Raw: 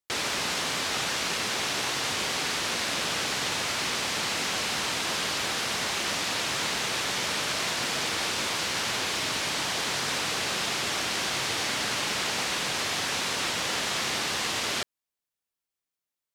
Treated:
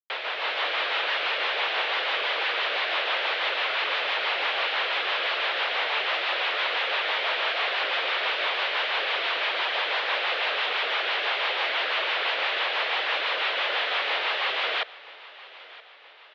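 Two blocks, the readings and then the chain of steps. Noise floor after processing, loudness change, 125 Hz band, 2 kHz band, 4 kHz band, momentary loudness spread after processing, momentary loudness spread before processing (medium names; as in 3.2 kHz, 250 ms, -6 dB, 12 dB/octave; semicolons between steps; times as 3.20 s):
-47 dBFS, +2.0 dB, under -40 dB, +5.0 dB, +1.5 dB, 1 LU, 0 LU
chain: level rider gain up to 7 dB; crossover distortion -36 dBFS; rotary cabinet horn 6 Hz; saturation -27 dBFS, distortion -10 dB; feedback delay 973 ms, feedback 53%, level -20 dB; mistuned SSB +55 Hz 440–3500 Hz; trim +7 dB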